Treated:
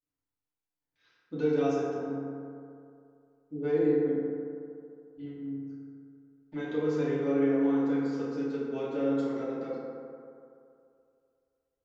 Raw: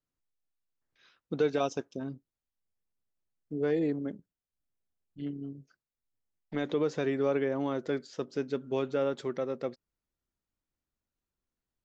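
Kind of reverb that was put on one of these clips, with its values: FDN reverb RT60 2.5 s, low-frequency decay 0.85×, high-frequency decay 0.35×, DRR -9.5 dB; trim -11.5 dB

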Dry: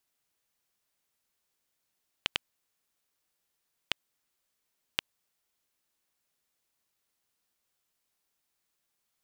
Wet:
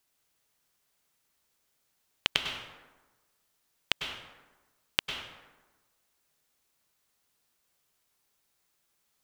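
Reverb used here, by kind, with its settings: plate-style reverb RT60 1.2 s, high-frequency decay 0.55×, pre-delay 90 ms, DRR 3.5 dB; trim +4 dB

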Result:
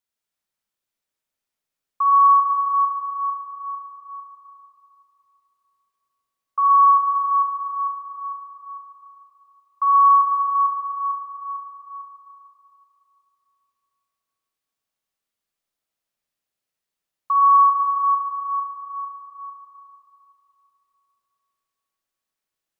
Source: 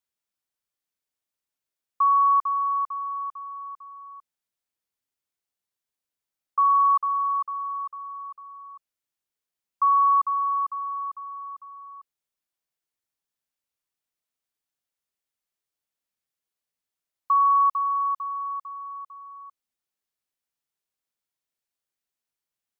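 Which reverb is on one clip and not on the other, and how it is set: algorithmic reverb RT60 3.1 s, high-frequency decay 0.65×, pre-delay 20 ms, DRR -2.5 dB

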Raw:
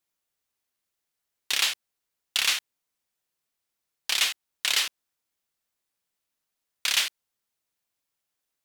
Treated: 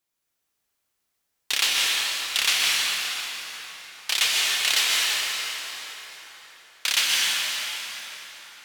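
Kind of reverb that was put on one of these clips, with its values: plate-style reverb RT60 4.6 s, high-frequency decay 0.7×, pre-delay 110 ms, DRR -4.5 dB; trim +1 dB

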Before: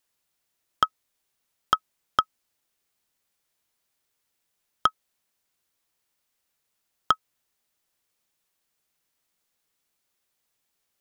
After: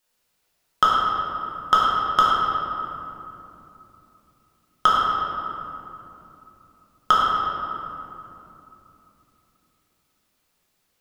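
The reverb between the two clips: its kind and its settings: simulated room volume 140 m³, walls hard, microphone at 1 m; trim +1 dB

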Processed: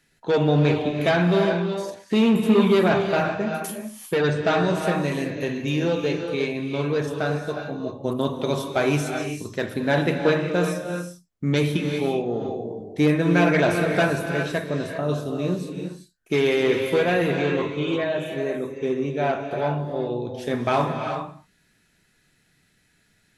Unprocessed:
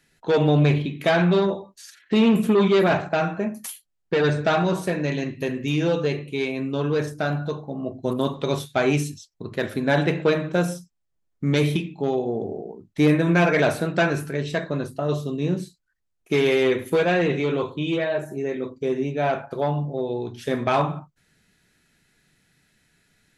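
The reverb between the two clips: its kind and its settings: gated-style reverb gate 420 ms rising, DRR 4.5 dB; trim -1 dB

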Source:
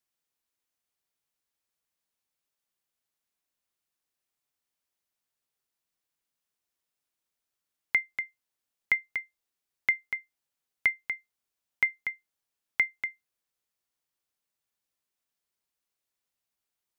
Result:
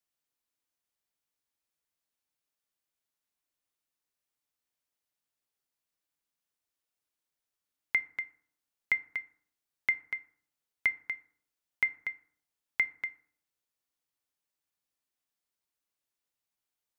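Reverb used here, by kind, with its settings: FDN reverb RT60 0.57 s, low-frequency decay 1.25×, high-frequency decay 0.5×, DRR 12 dB; trim -3 dB

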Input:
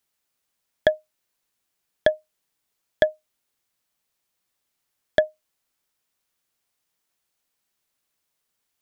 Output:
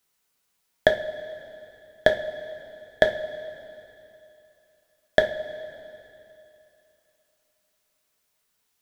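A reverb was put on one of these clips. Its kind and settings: two-slope reverb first 0.33 s, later 2.9 s, from -16 dB, DRR 2.5 dB; trim +2.5 dB

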